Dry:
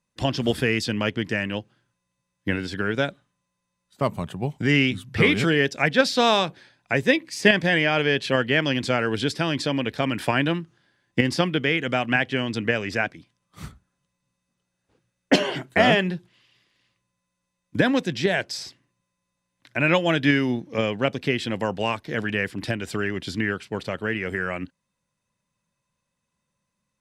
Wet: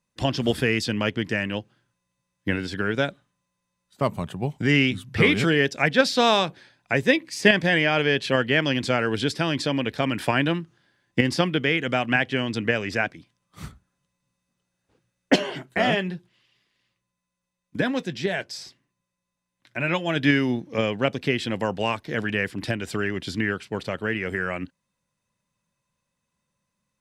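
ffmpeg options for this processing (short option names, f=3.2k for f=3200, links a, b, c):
-filter_complex "[0:a]asplit=3[a][b][c];[a]afade=t=out:st=15.34:d=0.02[d];[b]flanger=delay=4.5:depth=1.1:regen=-65:speed=1.8:shape=triangular,afade=t=in:st=15.34:d=0.02,afade=t=out:st=20.15:d=0.02[e];[c]afade=t=in:st=20.15:d=0.02[f];[d][e][f]amix=inputs=3:normalize=0"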